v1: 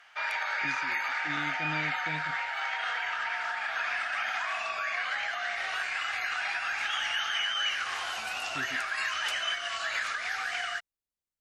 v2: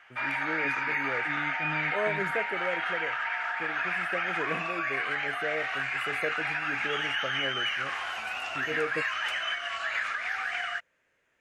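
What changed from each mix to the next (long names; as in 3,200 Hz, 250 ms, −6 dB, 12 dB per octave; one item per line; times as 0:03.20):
first voice: unmuted
master: add high shelf with overshoot 3,200 Hz −7 dB, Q 1.5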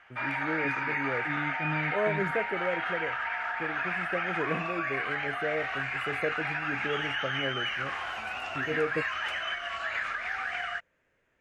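master: add spectral tilt −2 dB per octave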